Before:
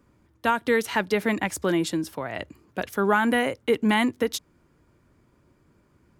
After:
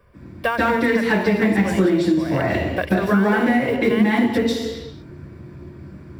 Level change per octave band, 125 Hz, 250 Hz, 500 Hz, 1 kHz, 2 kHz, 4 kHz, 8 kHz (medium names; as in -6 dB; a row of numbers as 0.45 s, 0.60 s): +11.5 dB, +8.5 dB, +5.5 dB, +3.0 dB, +5.0 dB, +2.0 dB, no reading